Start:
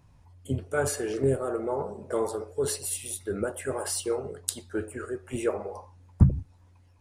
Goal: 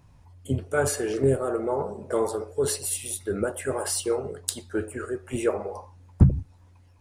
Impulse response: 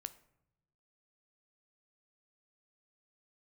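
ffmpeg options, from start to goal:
-af "asoftclip=type=hard:threshold=-10.5dB,volume=3dB"

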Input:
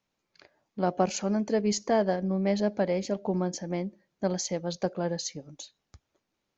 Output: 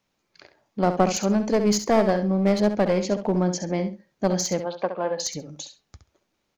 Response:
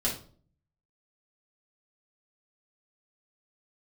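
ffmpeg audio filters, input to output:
-filter_complex "[0:a]aeval=exprs='clip(val(0),-1,0.0447)':channel_layout=same,asettb=1/sr,asplit=3[link_01][link_02][link_03];[link_01]atrim=end=4.604[link_04];[link_02]atrim=start=4.6:end=5.2,asetpts=PTS-STARTPTS,afade=type=in:duration=0.004:curve=qsin,afade=type=out:start_time=0.596:duration=0.004:curve=qsin,highpass=360,equalizer=frequency=380:width_type=q:width=4:gain=-4,equalizer=frequency=1000:width_type=q:width=4:gain=6,equalizer=frequency=1900:width_type=q:width=4:gain=-4,lowpass=frequency=3100:width=0.5412,lowpass=frequency=3100:width=1.3066[link_05];[link_03]atrim=start=5.196[link_06];[link_04][link_05]acrossfade=duration=0.004:curve1=hsin:curve2=qsin[link_07];[link_07][link_06]acrossfade=duration=0.004:curve1=qsin:curve2=hsin,asplit=2[link_08][link_09];[link_09]aecho=0:1:67|134:0.335|0.0536[link_10];[link_08][link_10]amix=inputs=2:normalize=0,volume=6dB"

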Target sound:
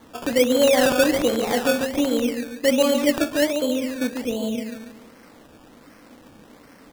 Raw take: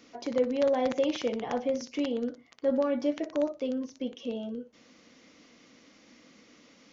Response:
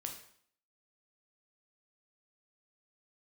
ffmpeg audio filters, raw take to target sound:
-af "aecho=1:1:142|284|426|568|710:0.501|0.221|0.097|0.0427|0.0188,acrusher=samples=17:mix=1:aa=0.000001:lfo=1:lforange=10.2:lforate=1.3,volume=8dB"

